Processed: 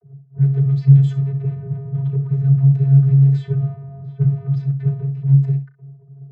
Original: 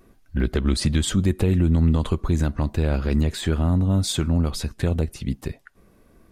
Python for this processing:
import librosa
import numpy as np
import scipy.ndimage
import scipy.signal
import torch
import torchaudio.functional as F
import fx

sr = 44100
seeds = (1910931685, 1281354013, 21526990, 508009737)

p1 = fx.low_shelf(x, sr, hz=210.0, db=6.0)
p2 = fx.fuzz(p1, sr, gain_db=41.0, gate_db=-48.0)
p3 = p1 + F.gain(torch.from_numpy(p2), -11.0).numpy()
p4 = fx.bass_treble(p3, sr, bass_db=15, treble_db=-4)
p5 = fx.vocoder(p4, sr, bands=32, carrier='square', carrier_hz=137.0)
p6 = fx.env_lowpass(p5, sr, base_hz=590.0, full_db=-5.0)
p7 = p6 + fx.room_early_taps(p6, sr, ms=(35, 64), db=(-13.5, -13.5), dry=0)
y = F.gain(torch.from_numpy(p7), -6.5).numpy()